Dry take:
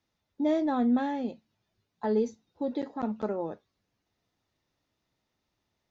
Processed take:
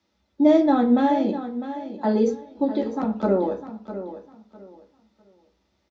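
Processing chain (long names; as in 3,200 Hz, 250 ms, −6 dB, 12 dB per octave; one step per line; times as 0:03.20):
0:02.63–0:03.13: downward compressor, threshold −30 dBFS, peak gain reduction 4.5 dB
repeating echo 653 ms, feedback 24%, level −12 dB
convolution reverb, pre-delay 3 ms, DRR 2 dB
level +3.5 dB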